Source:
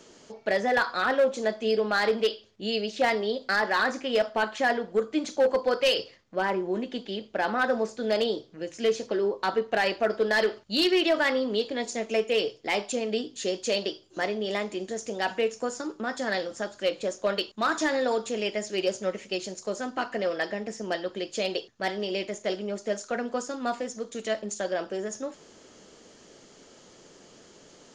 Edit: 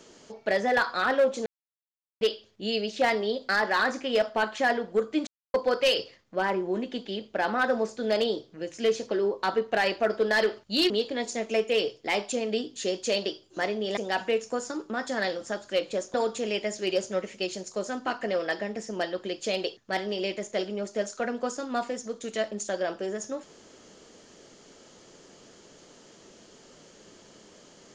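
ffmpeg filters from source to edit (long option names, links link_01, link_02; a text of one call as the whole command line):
ffmpeg -i in.wav -filter_complex "[0:a]asplit=8[link_01][link_02][link_03][link_04][link_05][link_06][link_07][link_08];[link_01]atrim=end=1.46,asetpts=PTS-STARTPTS,afade=type=out:start_time=1.456:duration=0.004:curve=hsin[link_09];[link_02]atrim=start=1.46:end=2.21,asetpts=PTS-STARTPTS,volume=0[link_10];[link_03]atrim=start=2.21:end=5.27,asetpts=PTS-STARTPTS,afade=type=in:duration=0.004:curve=hsin,afade=type=out:start_time=3.056:duration=0.004:curve=hsin[link_11];[link_04]atrim=start=5.27:end=5.54,asetpts=PTS-STARTPTS,volume=0[link_12];[link_05]atrim=start=5.54:end=10.902,asetpts=PTS-STARTPTS,afade=type=in:duration=0.004:curve=hsin[link_13];[link_06]atrim=start=11.498:end=14.572[link_14];[link_07]atrim=start=15.068:end=17.242[link_15];[link_08]atrim=start=18.048[link_16];[link_09][link_10][link_11][link_12][link_13]concat=n=5:v=0:a=1[link_17];[link_17][link_14]acrossfade=duration=0.004:curve1=hsin:curve2=hsin[link_18];[link_18][link_15]acrossfade=duration=0.004:curve1=hsin:curve2=hsin[link_19];[link_19][link_16]acrossfade=duration=0.004:curve1=hsin:curve2=hsin" out.wav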